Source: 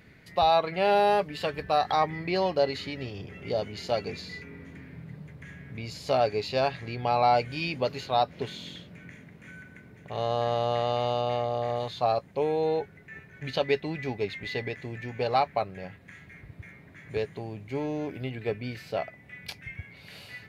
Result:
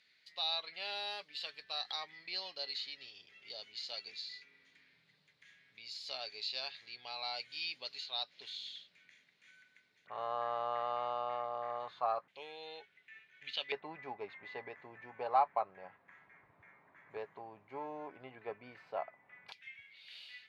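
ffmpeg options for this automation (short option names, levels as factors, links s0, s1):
-af "asetnsamples=n=441:p=0,asendcmd='10.07 bandpass f 1200;12.28 bandpass f 3200;13.72 bandpass f 1000;19.52 bandpass f 3400',bandpass=f=4100:t=q:w=2.7:csg=0"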